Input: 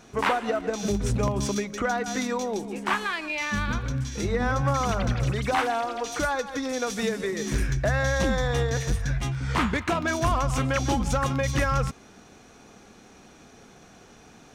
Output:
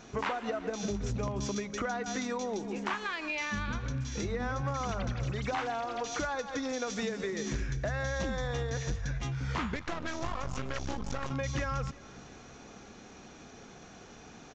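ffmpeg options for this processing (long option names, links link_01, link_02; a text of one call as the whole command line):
ffmpeg -i in.wav -filter_complex "[0:a]asettb=1/sr,asplit=3[link_01][link_02][link_03];[link_01]atrim=end=9.754[link_04];[link_02]atrim=start=9.75:end=11.31,asetpts=PTS-STARTPTS,afade=type=in:duration=0.004:curve=qsin,afade=type=out:start_time=1.556:duration=0.004:curve=qsin,aeval=exprs='max(val(0),0)':channel_layout=same[link_05];[link_03]atrim=start=11.306[link_06];[link_04][link_05]acrossfade=duration=0.004:curve1=hsin:curve2=qsin[link_07];[link_07][link_06]acrossfade=duration=0.004:curve1=qsin:curve2=hsin,acompressor=threshold=-33dB:ratio=3,asplit=2[link_08][link_09];[link_09]aecho=0:1:350|700|1050|1400:0.075|0.0435|0.0252|0.0146[link_10];[link_08][link_10]amix=inputs=2:normalize=0,aresample=16000,aresample=44100" out.wav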